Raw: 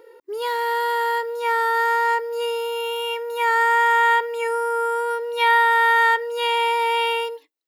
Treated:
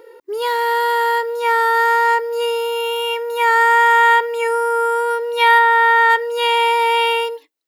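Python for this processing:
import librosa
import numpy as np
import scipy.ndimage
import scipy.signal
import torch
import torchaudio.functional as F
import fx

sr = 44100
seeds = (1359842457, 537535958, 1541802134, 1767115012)

y = fx.high_shelf(x, sr, hz=4100.0, db=-10.5, at=(5.58, 6.09), fade=0.02)
y = y * librosa.db_to_amplitude(5.0)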